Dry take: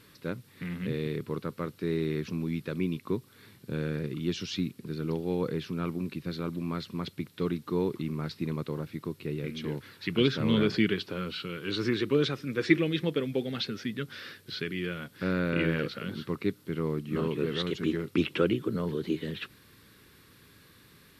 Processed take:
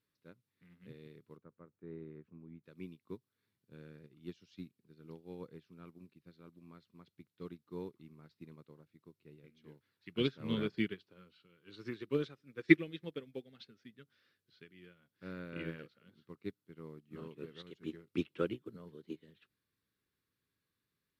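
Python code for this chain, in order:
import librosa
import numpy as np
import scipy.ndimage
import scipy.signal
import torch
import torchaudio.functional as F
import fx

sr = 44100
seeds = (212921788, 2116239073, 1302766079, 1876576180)

y = fx.lowpass(x, sr, hz=1400.0, slope=12, at=(1.37, 2.64))
y = fx.upward_expand(y, sr, threshold_db=-37.0, expansion=2.5)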